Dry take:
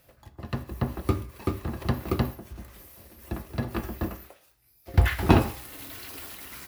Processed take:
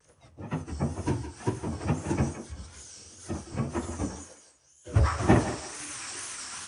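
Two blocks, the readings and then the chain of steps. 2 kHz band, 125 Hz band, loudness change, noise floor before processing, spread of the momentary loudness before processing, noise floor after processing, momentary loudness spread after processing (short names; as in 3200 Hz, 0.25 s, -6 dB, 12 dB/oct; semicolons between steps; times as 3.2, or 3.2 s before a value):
-3.0 dB, -1.5 dB, -1.5 dB, -62 dBFS, 22 LU, -61 dBFS, 19 LU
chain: inharmonic rescaling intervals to 82%; in parallel at -3 dB: compressor, threshold -40 dBFS, peak gain reduction 22 dB; on the sum: wow and flutter 130 cents; thinning echo 0.166 s, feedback 38%, high-pass 330 Hz, level -10 dB; spectral noise reduction 6 dB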